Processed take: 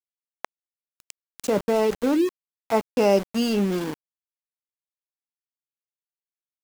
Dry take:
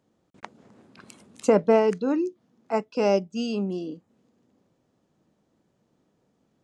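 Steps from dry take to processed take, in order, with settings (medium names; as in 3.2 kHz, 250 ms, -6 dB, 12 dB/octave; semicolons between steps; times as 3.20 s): in parallel at -1.5 dB: peak limiter -18 dBFS, peak gain reduction 11 dB; 1.48–2.20 s: on the sum: level held to a coarse grid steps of 10 dB; small samples zeroed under -28.5 dBFS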